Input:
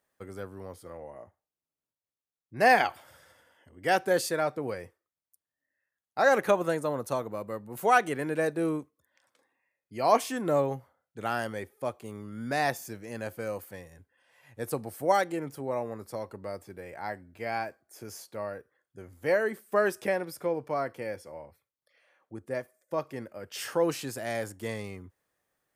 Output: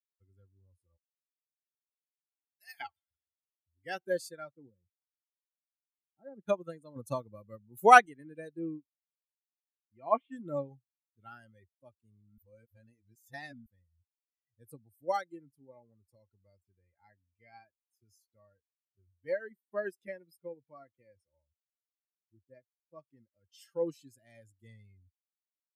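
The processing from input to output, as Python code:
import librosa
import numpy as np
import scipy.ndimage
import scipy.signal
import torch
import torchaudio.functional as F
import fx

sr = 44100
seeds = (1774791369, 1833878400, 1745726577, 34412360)

y = fx.pre_emphasis(x, sr, coefficient=0.97, at=(0.96, 2.79), fade=0.02)
y = fx.bandpass_q(y, sr, hz=200.0, q=0.91, at=(4.68, 6.46), fade=0.02)
y = fx.cheby2_lowpass(y, sr, hz=5800.0, order=4, stop_db=40, at=(8.59, 10.32))
y = fx.edit(y, sr, fx.clip_gain(start_s=6.96, length_s=1.1, db=6.0),
    fx.reverse_span(start_s=12.38, length_s=1.28), tone=tone)
y = fx.bin_expand(y, sr, power=2.0)
y = fx.low_shelf(y, sr, hz=85.0, db=7.0)
y = fx.upward_expand(y, sr, threshold_db=-44.0, expansion=1.5)
y = y * librosa.db_to_amplitude(1.5)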